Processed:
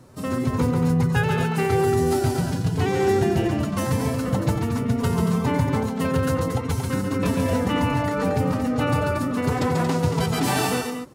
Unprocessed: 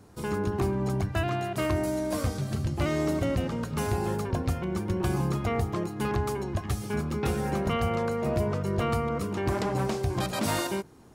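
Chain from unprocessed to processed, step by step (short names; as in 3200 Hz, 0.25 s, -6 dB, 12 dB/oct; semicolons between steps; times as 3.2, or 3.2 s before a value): on a send: tapped delay 0.139/0.23 s -4.5/-6 dB; on the sum: formant-preserving pitch shift +4 st; gain +4.5 dB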